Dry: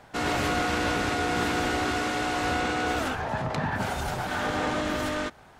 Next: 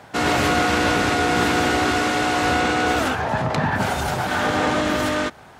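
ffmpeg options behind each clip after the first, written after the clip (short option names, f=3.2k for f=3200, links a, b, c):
-af "highpass=67,volume=7.5dB"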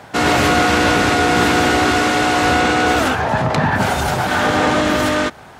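-af "acontrast=32"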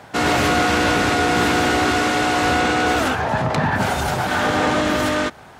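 -af "volume=8dB,asoftclip=hard,volume=-8dB,volume=-3dB"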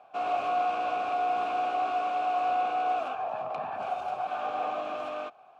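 -filter_complex "[0:a]asplit=3[a][b][c];[a]bandpass=f=730:t=q:w=8,volume=0dB[d];[b]bandpass=f=1.09k:t=q:w=8,volume=-6dB[e];[c]bandpass=f=2.44k:t=q:w=8,volume=-9dB[f];[d][e][f]amix=inputs=3:normalize=0,volume=-4dB"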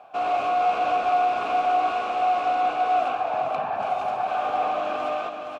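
-filter_complex "[0:a]asplit=2[a][b];[b]asoftclip=type=tanh:threshold=-30.5dB,volume=-4dB[c];[a][c]amix=inputs=2:normalize=0,aecho=1:1:468:0.531,volume=2.5dB"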